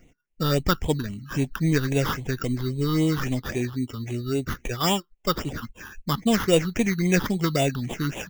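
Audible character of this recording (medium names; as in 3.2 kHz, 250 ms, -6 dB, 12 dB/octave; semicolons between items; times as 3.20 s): aliases and images of a low sample rate 4.2 kHz, jitter 0%; phasing stages 6, 3.7 Hz, lowest notch 610–1400 Hz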